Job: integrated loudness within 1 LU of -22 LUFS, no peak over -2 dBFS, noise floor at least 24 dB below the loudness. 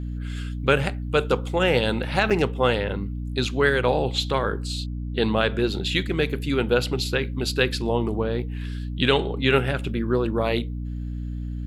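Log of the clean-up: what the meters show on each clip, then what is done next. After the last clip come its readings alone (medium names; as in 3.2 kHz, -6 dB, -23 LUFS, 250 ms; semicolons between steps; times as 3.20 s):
dropouts 1; longest dropout 5.7 ms; hum 60 Hz; highest harmonic 300 Hz; hum level -27 dBFS; loudness -24.0 LUFS; peak level -5.5 dBFS; loudness target -22.0 LUFS
-> interpolate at 2.30 s, 5.7 ms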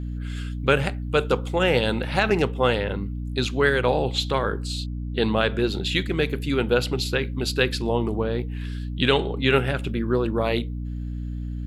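dropouts 0; hum 60 Hz; highest harmonic 300 Hz; hum level -27 dBFS
-> hum notches 60/120/180/240/300 Hz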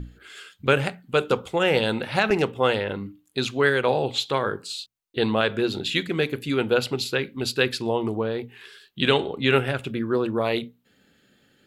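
hum not found; loudness -24.0 LUFS; peak level -6.0 dBFS; loudness target -22.0 LUFS
-> trim +2 dB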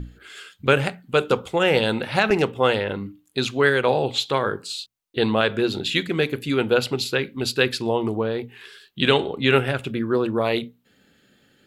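loudness -22.0 LUFS; peak level -4.0 dBFS; noise floor -62 dBFS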